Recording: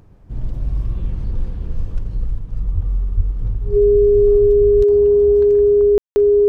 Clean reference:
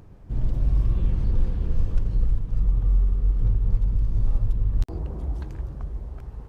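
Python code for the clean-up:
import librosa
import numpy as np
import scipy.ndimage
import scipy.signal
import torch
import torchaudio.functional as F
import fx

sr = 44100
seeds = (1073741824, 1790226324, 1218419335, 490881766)

y = fx.notch(x, sr, hz=410.0, q=30.0)
y = fx.highpass(y, sr, hz=140.0, slope=24, at=(2.74, 2.86), fade=0.02)
y = fx.highpass(y, sr, hz=140.0, slope=24, at=(3.16, 3.28), fade=0.02)
y = fx.fix_ambience(y, sr, seeds[0], print_start_s=0.0, print_end_s=0.5, start_s=5.98, end_s=6.16)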